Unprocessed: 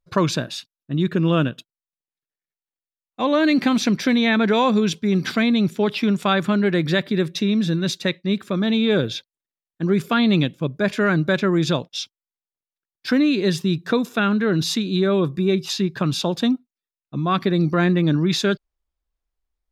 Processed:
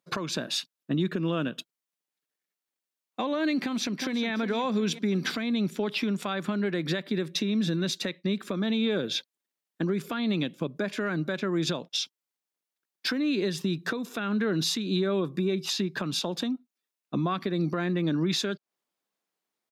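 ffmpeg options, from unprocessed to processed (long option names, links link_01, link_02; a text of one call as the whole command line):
ffmpeg -i in.wav -filter_complex "[0:a]asplit=2[link_01][link_02];[link_02]afade=type=in:start_time=3.56:duration=0.01,afade=type=out:start_time=4.26:duration=0.01,aecho=0:1:360|720|1080|1440:0.251189|0.087916|0.0307706|0.0107697[link_03];[link_01][link_03]amix=inputs=2:normalize=0,highpass=frequency=170:width=0.5412,highpass=frequency=170:width=1.3066,acompressor=threshold=-27dB:ratio=6,alimiter=limit=-24dB:level=0:latency=1:release=290,volume=5.5dB" out.wav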